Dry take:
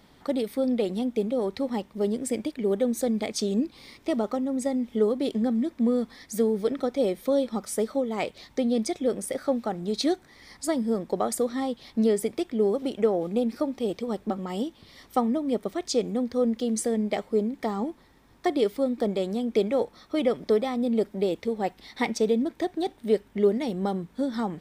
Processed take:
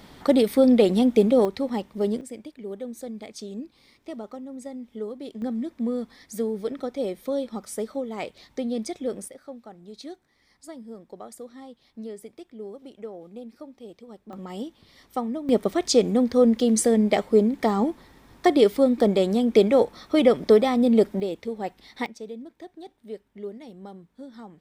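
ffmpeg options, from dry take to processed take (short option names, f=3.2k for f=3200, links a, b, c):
-af "asetnsamples=n=441:p=0,asendcmd='1.45 volume volume 1.5dB;2.21 volume volume -10dB;5.42 volume volume -3.5dB;9.28 volume volume -14.5dB;14.33 volume volume -4dB;15.49 volume volume 6.5dB;21.2 volume volume -3dB;22.06 volume volume -14dB',volume=8.5dB"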